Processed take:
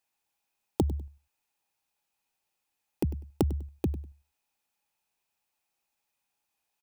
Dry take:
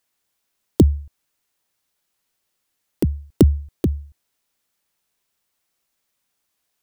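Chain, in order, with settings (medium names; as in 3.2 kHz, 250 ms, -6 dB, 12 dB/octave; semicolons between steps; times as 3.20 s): on a send: feedback delay 99 ms, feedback 17%, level -16 dB; on the sum: compression, threshold -14 dBFS, peak gain reduction 7 dB; small resonant body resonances 830/2500 Hz, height 12 dB, ringing for 25 ms; trim -8.5 dB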